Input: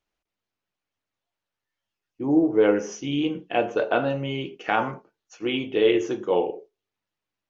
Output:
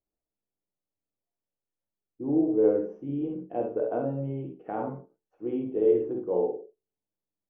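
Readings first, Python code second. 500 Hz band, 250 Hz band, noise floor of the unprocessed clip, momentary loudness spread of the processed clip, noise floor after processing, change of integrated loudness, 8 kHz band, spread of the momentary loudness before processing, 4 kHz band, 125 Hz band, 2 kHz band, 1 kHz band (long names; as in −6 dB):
−3.0 dB, −4.5 dB, below −85 dBFS, 13 LU, below −85 dBFS, −4.5 dB, can't be measured, 11 LU, below −30 dB, −2.5 dB, −23.0 dB, −10.0 dB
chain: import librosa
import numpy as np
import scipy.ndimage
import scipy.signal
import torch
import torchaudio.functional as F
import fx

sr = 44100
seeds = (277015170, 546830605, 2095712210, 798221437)

p1 = scipy.signal.sosfilt(scipy.signal.cheby1(2, 1.0, 540.0, 'lowpass', fs=sr, output='sos'), x)
p2 = p1 + fx.room_early_taps(p1, sr, ms=(50, 66), db=(-6.0, -5.5), dry=0)
y = p2 * 10.0 ** (-5.5 / 20.0)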